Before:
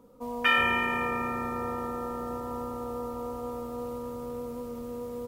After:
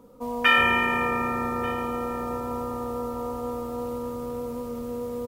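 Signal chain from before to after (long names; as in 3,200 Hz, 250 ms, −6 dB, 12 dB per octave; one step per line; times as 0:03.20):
single-tap delay 1,188 ms −20.5 dB
level +4.5 dB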